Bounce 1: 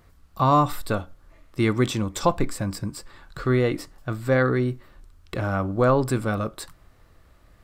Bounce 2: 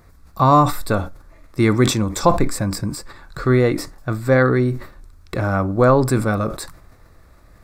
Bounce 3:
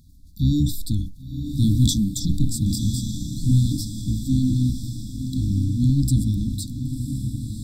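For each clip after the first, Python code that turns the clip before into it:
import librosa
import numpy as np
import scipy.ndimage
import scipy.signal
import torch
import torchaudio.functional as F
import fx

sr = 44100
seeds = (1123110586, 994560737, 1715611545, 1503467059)

y1 = fx.peak_eq(x, sr, hz=3000.0, db=-13.0, octaves=0.26)
y1 = fx.sustainer(y1, sr, db_per_s=110.0)
y1 = F.gain(torch.from_numpy(y1), 5.5).numpy()
y2 = fx.octave_divider(y1, sr, octaves=1, level_db=-4.0)
y2 = fx.brickwall_bandstop(y2, sr, low_hz=310.0, high_hz=3300.0)
y2 = fx.echo_diffused(y2, sr, ms=1047, feedback_pct=55, wet_db=-8.0)
y2 = F.gain(torch.from_numpy(y2), -1.5).numpy()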